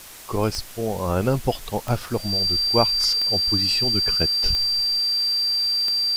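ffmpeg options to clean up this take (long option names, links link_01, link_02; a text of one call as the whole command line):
ffmpeg -i in.wav -af "adeclick=threshold=4,bandreject=frequency=4700:width=30,afwtdn=0.0089" out.wav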